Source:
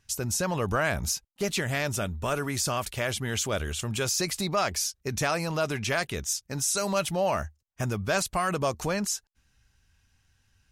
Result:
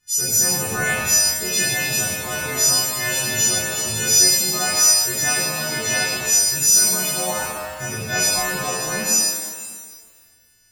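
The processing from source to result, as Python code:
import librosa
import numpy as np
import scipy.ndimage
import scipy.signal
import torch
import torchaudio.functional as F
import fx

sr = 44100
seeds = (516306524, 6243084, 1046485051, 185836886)

y = fx.freq_snap(x, sr, grid_st=3)
y = fx.rev_shimmer(y, sr, seeds[0], rt60_s=1.6, semitones=7, shimmer_db=-8, drr_db=-8.5)
y = y * 10.0 ** (-7.5 / 20.0)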